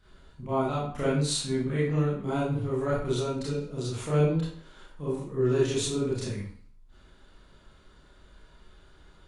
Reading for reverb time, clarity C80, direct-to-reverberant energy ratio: 0.55 s, 5.0 dB, -9.5 dB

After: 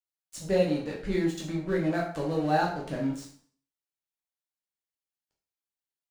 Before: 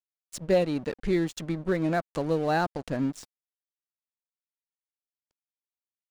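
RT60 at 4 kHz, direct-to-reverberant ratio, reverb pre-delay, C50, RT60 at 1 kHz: 0.45 s, -3.0 dB, 5 ms, 5.5 dB, 0.50 s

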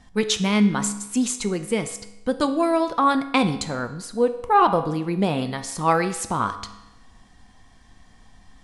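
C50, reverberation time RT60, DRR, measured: 11.5 dB, 0.90 s, 8.0 dB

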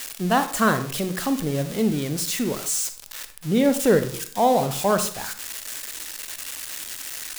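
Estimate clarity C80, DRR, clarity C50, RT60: 15.0 dB, 9.0 dB, 11.0 dB, 0.50 s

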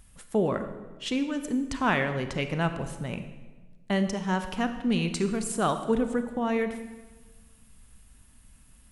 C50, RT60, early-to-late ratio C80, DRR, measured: 9.5 dB, 1.3 s, 11.0 dB, 8.0 dB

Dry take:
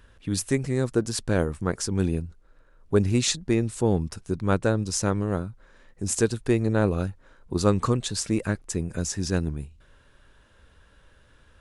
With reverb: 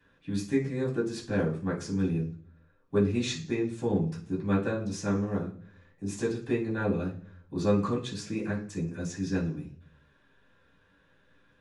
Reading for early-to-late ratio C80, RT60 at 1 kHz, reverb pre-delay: 14.5 dB, 0.40 s, 3 ms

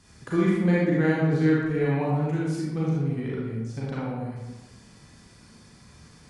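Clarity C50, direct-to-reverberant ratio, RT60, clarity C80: -2.0 dB, -6.5 dB, 1.1 s, 1.5 dB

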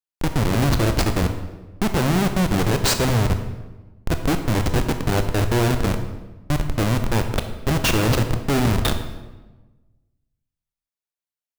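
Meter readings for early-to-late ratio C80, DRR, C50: 10.5 dB, 6.5 dB, 8.5 dB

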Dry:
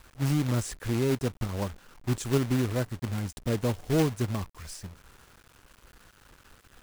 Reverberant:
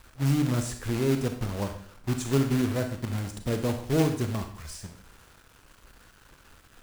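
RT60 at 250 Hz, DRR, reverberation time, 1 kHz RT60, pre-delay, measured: 0.60 s, 6.0 dB, 0.60 s, 0.60 s, 31 ms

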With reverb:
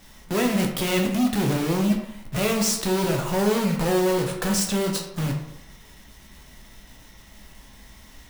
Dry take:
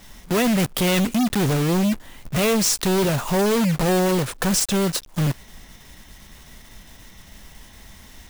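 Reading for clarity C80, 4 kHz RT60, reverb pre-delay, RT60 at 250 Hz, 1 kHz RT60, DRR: 9.0 dB, 0.50 s, 11 ms, 0.75 s, 0.80 s, 1.5 dB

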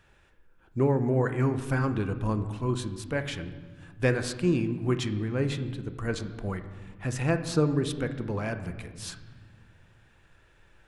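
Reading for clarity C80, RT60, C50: 12.5 dB, 1.5 s, 11.0 dB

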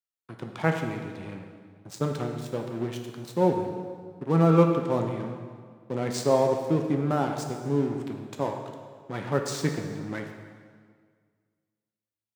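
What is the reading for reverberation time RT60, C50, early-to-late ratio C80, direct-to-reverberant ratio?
1.8 s, 5.0 dB, 6.5 dB, 3.0 dB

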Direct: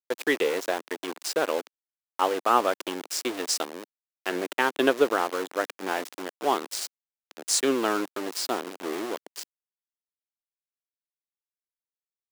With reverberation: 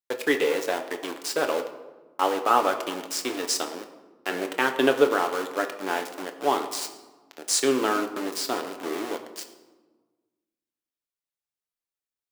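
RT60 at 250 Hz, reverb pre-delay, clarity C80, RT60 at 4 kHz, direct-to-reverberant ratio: 1.9 s, 7 ms, 12.0 dB, 0.75 s, 5.0 dB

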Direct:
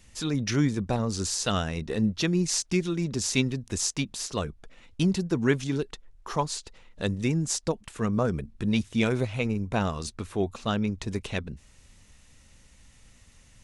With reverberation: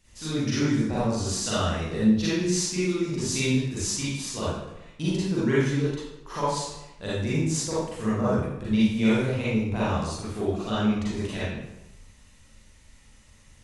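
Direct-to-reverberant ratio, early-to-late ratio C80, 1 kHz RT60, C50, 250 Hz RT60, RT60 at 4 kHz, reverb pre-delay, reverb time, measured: -10.5 dB, 1.0 dB, 0.90 s, -4.5 dB, 0.90 s, 0.70 s, 36 ms, 0.95 s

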